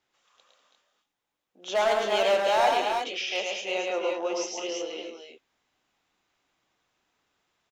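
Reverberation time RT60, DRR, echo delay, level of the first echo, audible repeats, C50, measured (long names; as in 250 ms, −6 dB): no reverb audible, no reverb audible, 77 ms, −19.0 dB, 4, no reverb audible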